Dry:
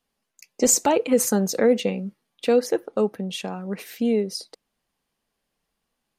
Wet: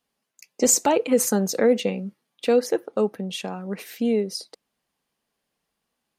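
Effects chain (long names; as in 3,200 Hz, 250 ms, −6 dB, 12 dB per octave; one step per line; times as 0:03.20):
high-pass filter 96 Hz 6 dB per octave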